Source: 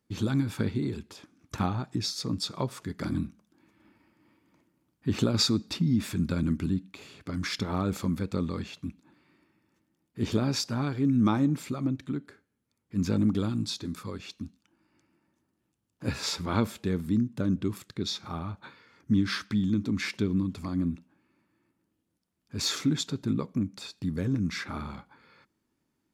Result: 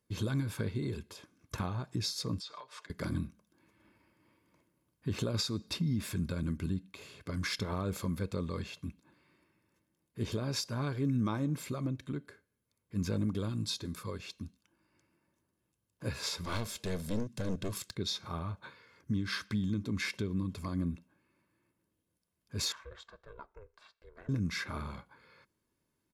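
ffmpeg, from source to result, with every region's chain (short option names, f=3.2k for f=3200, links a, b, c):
-filter_complex "[0:a]asettb=1/sr,asplit=3[a][b][c];[a]atrim=end=2.404[d];[b]atrim=start=2.4:end=2.9,asetpts=PTS-STARTPTS,afade=t=in:d=0.004:c=qsin,afade=t=out:st=0.496:d=0.004:c=qsin,aecho=1:1:6.7:0.62,atrim=end_sample=22050,acompressor=threshold=-35dB:ratio=16:attack=3.2:release=140:knee=1:detection=peak,highpass=770,lowpass=5.1k[e];[c]atrim=start=2.896[f];[d][e]acrossfade=d=0.004:c1=hsin:c2=qsin[g];[g][f]acrossfade=d=0.004:c1=qsin:c2=hsin,asettb=1/sr,asplit=3[h][i][j];[h]atrim=end=16.444[k];[i]atrim=start=16.44:end=17.95,asetpts=PTS-STARTPTS,afade=t=in:d=0.004:c=qsin,afade=t=out:st=1.506:d=0.004:c=qsin,equalizer=f=5.6k:t=o:w=1.9:g=11,aeval=exprs='clip(val(0),-1,0.0224)':c=same[l];[j]atrim=start=17.946[m];[k][l]acrossfade=d=0.004:c1=hsin:c2=qsin[n];[n][m]acrossfade=d=0.004:c1=qsin:c2=hsin,asettb=1/sr,asplit=3[o][p][q];[o]atrim=end=22.724[r];[p]atrim=start=22.72:end=24.29,asetpts=PTS-STARTPTS,afade=t=in:d=0.004:c=qsin,afade=t=out:st=1.566:d=0.004:c=qsin,bandpass=f=1.2k:t=q:w=2.1,aeval=exprs='val(0)*sin(2*PI*210*n/s)':c=same[s];[q]atrim=start=24.286[t];[r][s]acrossfade=d=0.004:c1=hsin:c2=qsin[u];[u][t]acrossfade=d=0.004:c1=qsin:c2=hsin,equalizer=f=11k:t=o:w=0.27:g=7,aecho=1:1:1.9:0.41,alimiter=limit=-20.5dB:level=0:latency=1:release=319,volume=-3dB"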